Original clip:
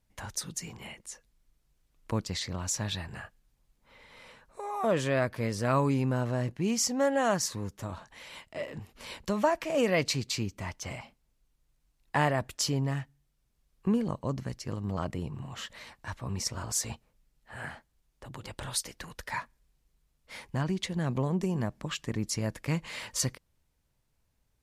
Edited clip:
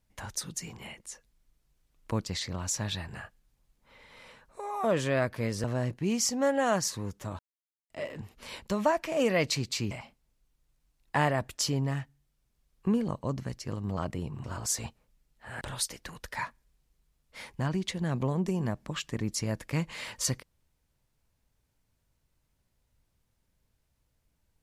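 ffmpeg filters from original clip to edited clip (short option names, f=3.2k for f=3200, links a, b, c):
-filter_complex "[0:a]asplit=7[a][b][c][d][e][f][g];[a]atrim=end=5.642[h];[b]atrim=start=6.218:end=7.97,asetpts=PTS-STARTPTS,afade=t=out:st=1.748:d=0.004:c=hsin[i];[c]atrim=start=7.97:end=8.48,asetpts=PTS-STARTPTS,volume=0[j];[d]atrim=start=8.48:end=10.492,asetpts=PTS-STARTPTS,afade=t=in:d=0.004:c=hsin[k];[e]atrim=start=10.908:end=15.442[l];[f]atrim=start=16.498:end=17.672[m];[g]atrim=start=18.558[n];[i][j][k]concat=n=3:v=0:a=1[o];[h][o]acrossfade=d=0.004:c1=hsin:c2=hsin[p];[p][l]acrossfade=d=0.004:c1=hsin:c2=hsin[q];[q][m]acrossfade=d=0.004:c1=hsin:c2=hsin[r];[r][n]acrossfade=d=0.004:c1=hsin:c2=hsin"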